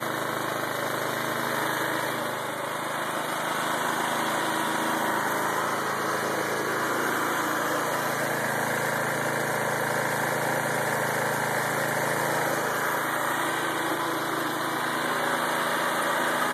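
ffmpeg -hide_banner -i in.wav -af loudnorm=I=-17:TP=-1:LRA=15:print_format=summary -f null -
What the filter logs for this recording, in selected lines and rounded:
Input Integrated:    -26.5 LUFS
Input True Peak:     -13.2 dBTP
Input LRA:             1.4 LU
Input Threshold:     -36.5 LUFS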